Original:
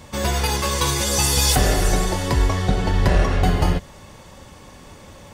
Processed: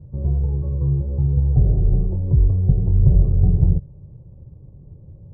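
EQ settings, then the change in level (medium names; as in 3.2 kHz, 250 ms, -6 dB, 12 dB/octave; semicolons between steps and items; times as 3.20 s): four-pole ladder low-pass 480 Hz, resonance 30%; distance through air 240 m; resonant low shelf 180 Hz +9 dB, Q 3; 0.0 dB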